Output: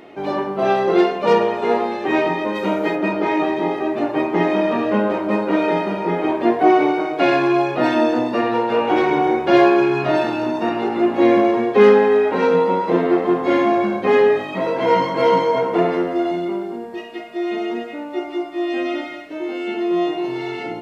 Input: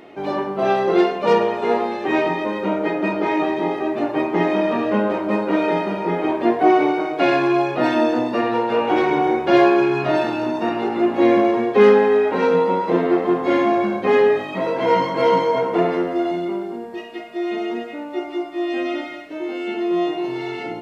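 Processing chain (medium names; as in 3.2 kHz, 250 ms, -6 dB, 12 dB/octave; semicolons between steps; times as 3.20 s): 2.54–2.95 s: treble shelf 3.5 kHz -> 5.1 kHz +11.5 dB; trim +1 dB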